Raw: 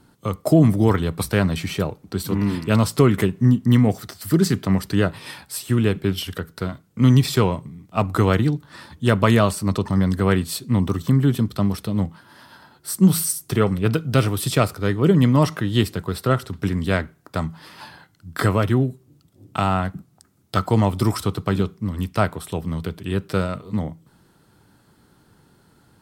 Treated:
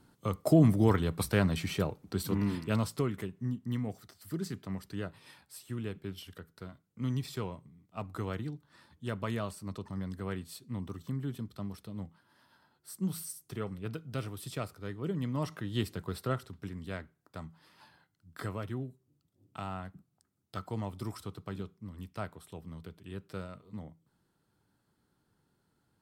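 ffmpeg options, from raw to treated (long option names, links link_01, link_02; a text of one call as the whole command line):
ffmpeg -i in.wav -af "volume=-0.5dB,afade=type=out:start_time=2.24:duration=0.92:silence=0.281838,afade=type=in:start_time=15.25:duration=0.85:silence=0.421697,afade=type=out:start_time=16.1:duration=0.58:silence=0.421697" out.wav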